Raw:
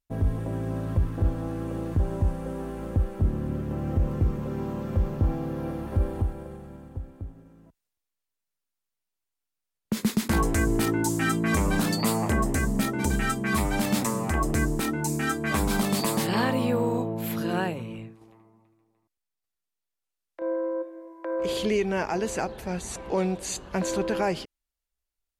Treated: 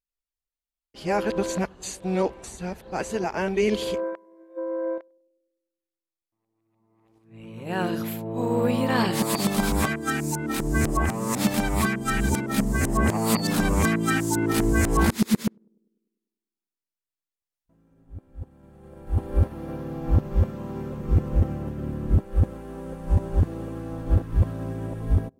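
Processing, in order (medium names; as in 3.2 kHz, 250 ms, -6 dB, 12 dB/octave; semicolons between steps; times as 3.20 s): reverse the whole clip; band-passed feedback delay 99 ms, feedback 67%, band-pass 330 Hz, level -20.5 dB; upward expansion 1.5:1, over -45 dBFS; trim +4.5 dB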